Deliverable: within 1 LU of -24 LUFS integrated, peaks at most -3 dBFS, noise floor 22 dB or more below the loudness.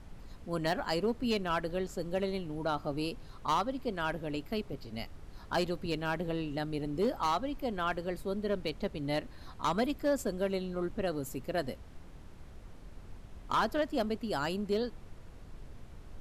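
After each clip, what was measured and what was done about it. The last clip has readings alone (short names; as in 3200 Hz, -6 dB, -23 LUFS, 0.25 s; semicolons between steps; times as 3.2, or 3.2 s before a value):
clipped 0.6%; flat tops at -23.0 dBFS; noise floor -51 dBFS; noise floor target -57 dBFS; loudness -34.5 LUFS; peak -23.0 dBFS; loudness target -24.0 LUFS
-> clip repair -23 dBFS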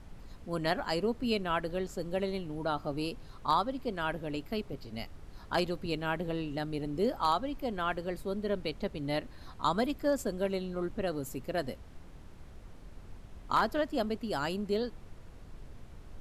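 clipped 0.0%; noise floor -51 dBFS; noise floor target -56 dBFS
-> noise print and reduce 6 dB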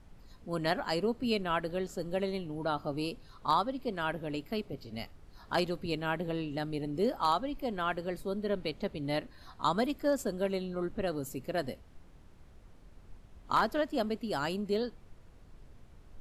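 noise floor -56 dBFS; loudness -33.5 LUFS; peak -14.0 dBFS; loudness target -24.0 LUFS
-> gain +9.5 dB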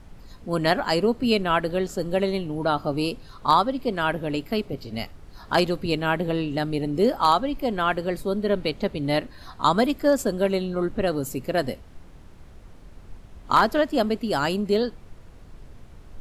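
loudness -24.0 LUFS; peak -4.5 dBFS; noise floor -47 dBFS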